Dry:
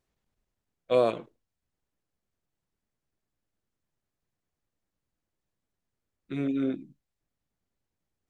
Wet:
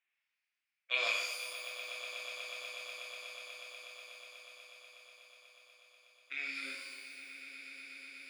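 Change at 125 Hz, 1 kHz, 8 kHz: under -40 dB, -9.0 dB, n/a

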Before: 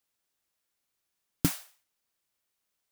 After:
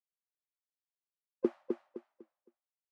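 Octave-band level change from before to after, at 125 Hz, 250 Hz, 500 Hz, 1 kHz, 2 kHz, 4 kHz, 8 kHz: -23.5 dB, -2.5 dB, +10.5 dB, -7.5 dB, -16.5 dB, under -25 dB, under -40 dB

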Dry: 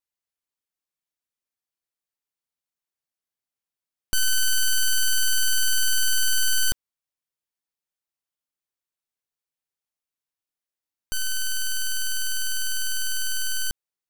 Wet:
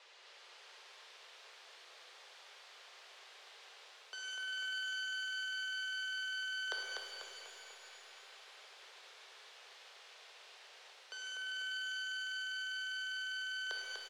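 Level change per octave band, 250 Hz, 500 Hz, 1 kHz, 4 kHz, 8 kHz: under -20 dB, n/a, -3.0 dB, -12.5 dB, -28.0 dB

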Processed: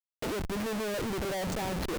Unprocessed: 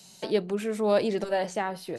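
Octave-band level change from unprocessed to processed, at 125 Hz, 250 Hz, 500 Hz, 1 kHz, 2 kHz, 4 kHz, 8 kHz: +2.5, -3.0, -8.0, -5.0, -1.5, -0.5, +3.5 dB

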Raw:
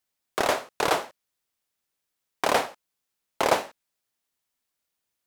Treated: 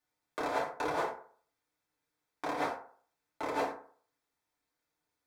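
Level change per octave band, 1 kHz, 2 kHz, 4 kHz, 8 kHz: -8.0, -9.5, -16.0, -17.5 dB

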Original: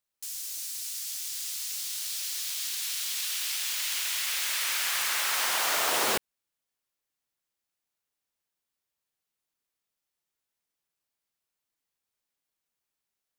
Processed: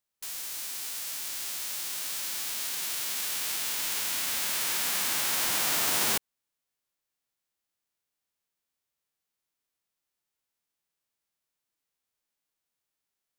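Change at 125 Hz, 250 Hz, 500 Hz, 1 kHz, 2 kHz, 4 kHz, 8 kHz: +8.0, +2.5, -4.0, -3.5, -2.5, -1.5, 0.0 dB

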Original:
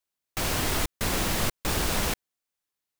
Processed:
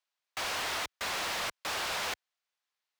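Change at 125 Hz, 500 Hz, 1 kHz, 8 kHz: -23.0, -8.5, -3.0, -8.5 dB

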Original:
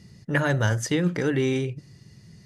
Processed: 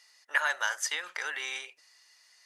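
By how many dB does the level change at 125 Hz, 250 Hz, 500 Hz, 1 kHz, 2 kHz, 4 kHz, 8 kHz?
under -40 dB, under -35 dB, -19.5 dB, -2.0 dB, 0.0 dB, 0.0 dB, 0.0 dB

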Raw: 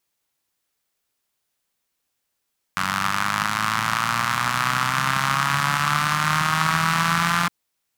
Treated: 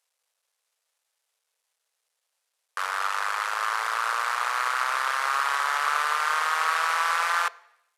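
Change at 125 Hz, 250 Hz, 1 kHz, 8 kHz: under -40 dB, under -35 dB, -3.0 dB, -6.5 dB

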